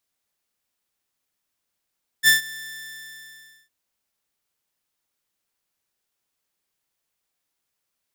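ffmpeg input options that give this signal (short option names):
-f lavfi -i "aevalsrc='0.398*(2*mod(1770*t,1)-1)':d=1.46:s=44100,afade=t=in:d=0.047,afade=t=out:st=0.047:d=0.133:silence=0.0794,afade=t=out:st=0.23:d=1.23"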